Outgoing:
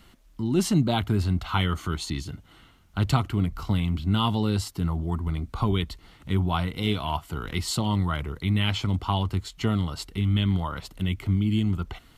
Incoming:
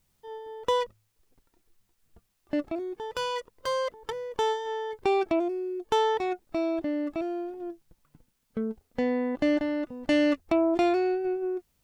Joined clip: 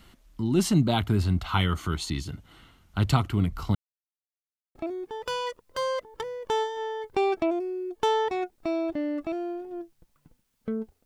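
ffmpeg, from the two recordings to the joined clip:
-filter_complex "[0:a]apad=whole_dur=11.05,atrim=end=11.05,asplit=2[a][b];[a]atrim=end=3.75,asetpts=PTS-STARTPTS,afade=t=out:st=3.746:d=0.004:c=hsin[c];[b]atrim=start=3.75:end=4.75,asetpts=PTS-STARTPTS,volume=0[d];[1:a]atrim=start=2.64:end=8.94,asetpts=PTS-STARTPTS,afade=t=in:d=0.004:c=hsin[e];[c][d][e]concat=n=3:v=0:a=1"

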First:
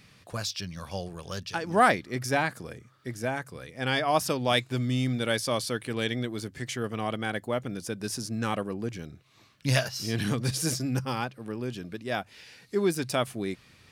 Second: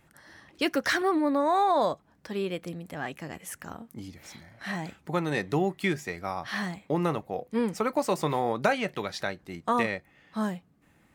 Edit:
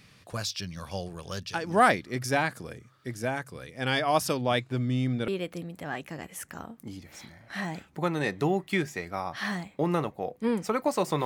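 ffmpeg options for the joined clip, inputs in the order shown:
-filter_complex "[0:a]asettb=1/sr,asplit=3[a][b][c];[a]atrim=end=4.414[d];[b]atrim=start=4.41:end=5.28,asetpts=PTS-STARTPTS,afade=t=in:d=0.004:c=qsin,afade=t=out:st=0.866:d=0.004:c=qsin,highshelf=f=3.1k:g=-11[e];[c]atrim=start=5.276[f];[d][e]acrossfade=d=0.004:c1=hsin:c2=qsin[g];[g][f]acrossfade=d=0.004:c1=qsin:c2=hsin,apad=whole_dur=11.25,atrim=end=11.25,atrim=end=5.282[h];[1:a]atrim=start=2.388:end=8.36[i];[h][i]acrossfade=d=0.004:c1=hsin:c2=hsin"

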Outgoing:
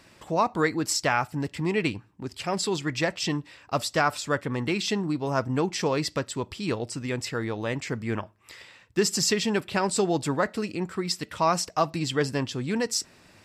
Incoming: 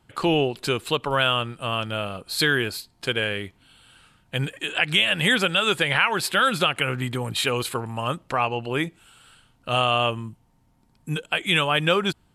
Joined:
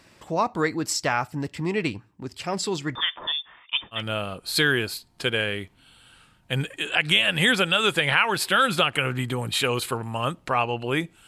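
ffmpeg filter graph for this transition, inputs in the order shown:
-filter_complex "[0:a]asettb=1/sr,asplit=3[a][b][c];[a]atrim=end=2.954[d];[b]atrim=start=2.95:end=4.03,asetpts=PTS-STARTPTS,afade=t=in:d=0.004:c=qsin,afade=t=out:st=1.076:d=0.004:c=qsin,lowpass=f=3.1k:t=q:w=0.5098,lowpass=f=3.1k:t=q:w=0.6013,lowpass=f=3.1k:t=q:w=0.9,lowpass=f=3.1k:t=q:w=2.563,afreqshift=-3700[e];[c]atrim=start=4.026[f];[d][e]acrossfade=d=0.004:c1=hsin:c2=qsin[g];[g][f]acrossfade=d=0.004:c1=qsin:c2=hsin,apad=whole_dur=11.27,atrim=end=11.27,atrim=end=4.03,asetpts=PTS-STARTPTS[h];[1:a]atrim=start=1.74:end=9.1,asetpts=PTS-STARTPTS[i];[h][i]acrossfade=d=0.12:c1=tri:c2=tri"

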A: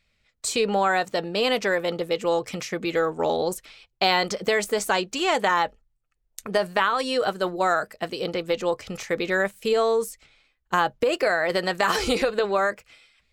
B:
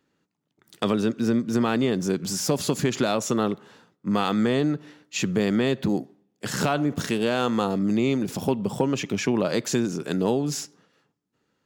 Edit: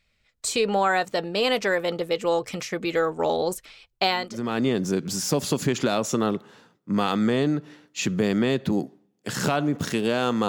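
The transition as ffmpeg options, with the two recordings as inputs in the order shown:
-filter_complex "[0:a]apad=whole_dur=10.48,atrim=end=10.48,atrim=end=4.63,asetpts=PTS-STARTPTS[a];[1:a]atrim=start=1.18:end=7.65,asetpts=PTS-STARTPTS[b];[a][b]acrossfade=d=0.62:c1=qua:c2=qua"

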